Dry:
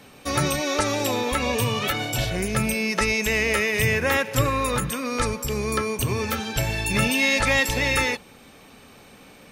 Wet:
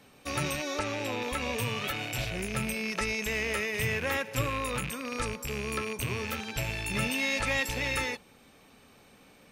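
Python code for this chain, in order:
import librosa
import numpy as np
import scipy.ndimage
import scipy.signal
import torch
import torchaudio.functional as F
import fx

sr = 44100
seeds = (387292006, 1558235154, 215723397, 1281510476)

y = fx.rattle_buzz(x, sr, strikes_db=-34.0, level_db=-16.0)
y = fx.high_shelf(y, sr, hz=6400.0, db=-11.0, at=(0.79, 1.22))
y = F.gain(torch.from_numpy(y), -9.0).numpy()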